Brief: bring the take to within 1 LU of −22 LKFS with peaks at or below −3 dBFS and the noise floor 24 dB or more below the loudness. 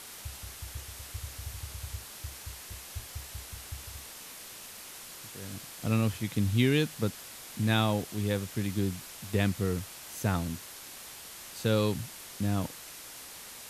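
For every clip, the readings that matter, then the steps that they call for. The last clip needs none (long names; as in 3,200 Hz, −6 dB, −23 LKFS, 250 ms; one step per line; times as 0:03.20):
background noise floor −46 dBFS; target noise floor −58 dBFS; integrated loudness −33.5 LKFS; sample peak −12.5 dBFS; target loudness −22.0 LKFS
→ broadband denoise 12 dB, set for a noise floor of −46 dBFS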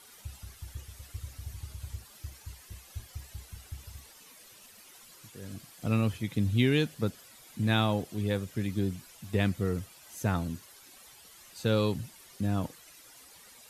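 background noise floor −54 dBFS; target noise floor −55 dBFS
→ broadband denoise 6 dB, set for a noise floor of −54 dBFS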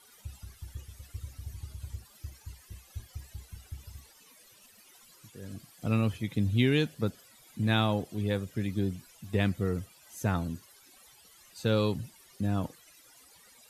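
background noise floor −58 dBFS; integrated loudness −31.0 LKFS; sample peak −13.0 dBFS; target loudness −22.0 LKFS
→ level +9 dB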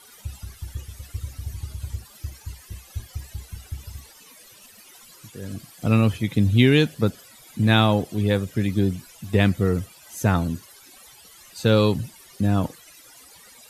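integrated loudness −22.0 LKFS; sample peak −4.0 dBFS; background noise floor −49 dBFS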